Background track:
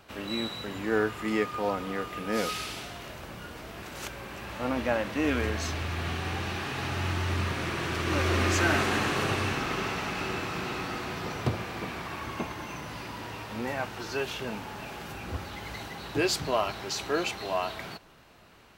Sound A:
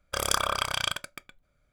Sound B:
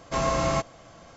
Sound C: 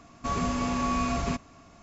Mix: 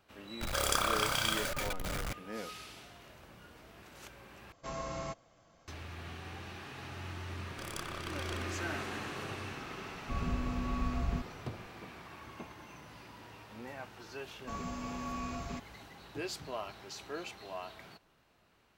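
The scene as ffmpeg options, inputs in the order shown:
-filter_complex "[1:a]asplit=2[s0][s1];[3:a]asplit=2[s2][s3];[0:a]volume=0.224[s4];[s0]aeval=exprs='val(0)+0.5*0.075*sgn(val(0))':c=same[s5];[s1]aeval=exprs='if(lt(val(0),0),0.251*val(0),val(0))':c=same[s6];[s2]aemphasis=mode=reproduction:type=bsi[s7];[s4]asplit=2[s8][s9];[s8]atrim=end=4.524[s10];[2:a]atrim=end=1.16,asetpts=PTS-STARTPTS,volume=0.178[s11];[s9]atrim=start=5.676[s12];[s5]atrim=end=1.72,asetpts=PTS-STARTPTS,volume=0.398,afade=t=in:d=0.004:c=hsin,afade=t=out:st=1.716:d=0.004:c=hsin,adelay=410[s13];[s6]atrim=end=1.72,asetpts=PTS-STARTPTS,volume=0.188,afade=t=in:d=0.004:c=hsin,afade=t=out:st=1.716:d=0.004:c=hsin,adelay=7450[s14];[s7]atrim=end=1.82,asetpts=PTS-STARTPTS,volume=0.224,afade=t=in:d=0.004:c=hsin,afade=t=out:st=1.816:d=0.004:c=hsin,adelay=9850[s15];[s3]atrim=end=1.82,asetpts=PTS-STARTPTS,volume=0.251,afade=t=in:d=0.004:c=hsin,afade=t=out:st=1.816:d=0.004:c=hsin,adelay=14230[s16];[s10][s11]acrossfade=d=0.004:c1=hsin:c2=hsin[s17];[s17][s12]acrossfade=d=0.004:c1=hsin:c2=hsin[s18];[s18][s13][s14][s15][s16]amix=inputs=5:normalize=0"

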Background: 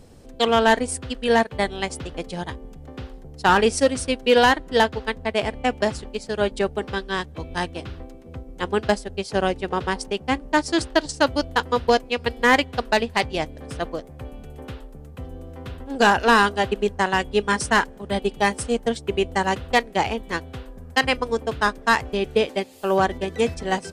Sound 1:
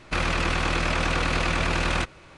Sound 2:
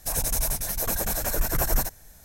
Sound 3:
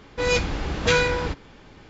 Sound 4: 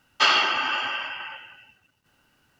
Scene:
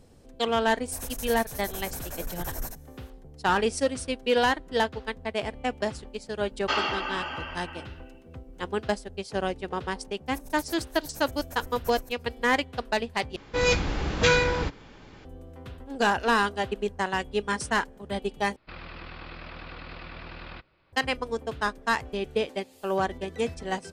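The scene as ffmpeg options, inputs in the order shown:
-filter_complex "[2:a]asplit=2[s0][s1];[0:a]volume=0.447[s2];[4:a]equalizer=f=310:w=0.35:g=12[s3];[s1]aeval=exprs='val(0)*pow(10,-25*(0.5-0.5*cos(2*PI*8.7*n/s))/20)':c=same[s4];[1:a]aresample=11025,aresample=44100[s5];[s2]asplit=3[s6][s7][s8];[s6]atrim=end=13.364[s9];[3:a]atrim=end=1.89,asetpts=PTS-STARTPTS,volume=0.891[s10];[s7]atrim=start=15.246:end=18.564[s11];[s5]atrim=end=2.37,asetpts=PTS-STARTPTS,volume=0.133[s12];[s8]atrim=start=20.926[s13];[s0]atrim=end=2.24,asetpts=PTS-STARTPTS,volume=0.282,afade=t=in:d=0.004:c=hsin,afade=t=out:st=2.236:d=0.004:c=hsin,adelay=860[s14];[s3]atrim=end=2.59,asetpts=PTS-STARTPTS,volume=0.266,afade=t=in:d=0.004:c=hsin,afade=t=out:st=2.586:d=0.004:c=hsin,adelay=6480[s15];[s4]atrim=end=2.24,asetpts=PTS-STARTPTS,volume=0.211,afade=t=in:d=0.004:c=hsin,afade=t=out:st=2.236:d=0.004:c=hsin,adelay=452466S[s16];[s9][s10]acrossfade=d=0.004:c1=hsin:c2=hsin[s17];[s17][s11]acrossfade=d=0.004:c1=hsin:c2=hsin[s18];[s18][s12]acrossfade=d=0.004:c1=hsin:c2=hsin[s19];[s19][s13]acrossfade=d=0.004:c1=hsin:c2=hsin[s20];[s20][s14][s15][s16]amix=inputs=4:normalize=0"

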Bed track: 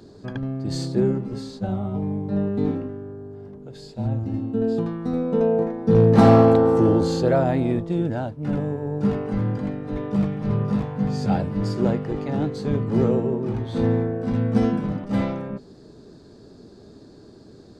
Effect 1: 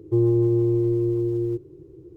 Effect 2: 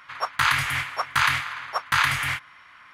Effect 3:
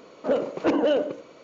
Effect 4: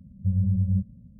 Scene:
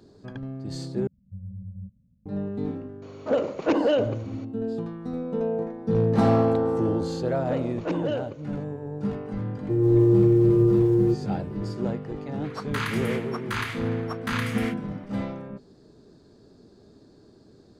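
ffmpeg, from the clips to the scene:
-filter_complex "[3:a]asplit=2[s0][s1];[0:a]volume=0.447[s2];[1:a]dynaudnorm=f=190:g=3:m=3.76[s3];[s2]asplit=2[s4][s5];[s4]atrim=end=1.074[s6];[4:a]atrim=end=1.19,asetpts=PTS-STARTPTS,volume=0.178[s7];[s5]atrim=start=2.256[s8];[s0]atrim=end=1.43,asetpts=PTS-STARTPTS,afade=t=in:d=0.004:c=hsin,afade=t=out:st=1.426:d=0.004:c=hsin,adelay=3020[s9];[s1]atrim=end=1.43,asetpts=PTS-STARTPTS,volume=0.447,afade=t=in:d=0.004:c=hsin,afade=t=out:st=1.426:d=0.004:c=hsin,adelay=7210[s10];[s3]atrim=end=2.16,asetpts=PTS-STARTPTS,volume=0.473,afade=t=in:d=0.004:c=hsin,afade=t=out:st=2.156:d=0.004:c=hsin,adelay=9570[s11];[2:a]atrim=end=2.93,asetpts=PTS-STARTPTS,volume=0.316,afade=t=in:d=0.004:c=hsin,afade=t=out:st=2.926:d=0.004:c=hsin,adelay=12350[s12];[s6][s7]acrossfade=d=0.004:c1=hsin:c2=hsin[s13];[s13][s8]acrossfade=d=0.004:c1=hsin:c2=hsin[s14];[s14][s9][s10][s11][s12]amix=inputs=5:normalize=0"

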